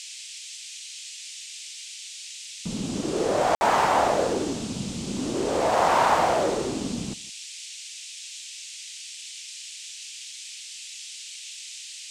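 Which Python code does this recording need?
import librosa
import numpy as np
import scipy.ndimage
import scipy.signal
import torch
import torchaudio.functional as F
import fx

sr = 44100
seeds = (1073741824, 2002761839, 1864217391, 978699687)

y = fx.fix_declick_ar(x, sr, threshold=6.5)
y = fx.fix_ambience(y, sr, seeds[0], print_start_s=10.31, print_end_s=10.81, start_s=3.55, end_s=3.61)
y = fx.noise_reduce(y, sr, print_start_s=10.31, print_end_s=10.81, reduce_db=30.0)
y = fx.fix_echo_inverse(y, sr, delay_ms=161, level_db=-22.0)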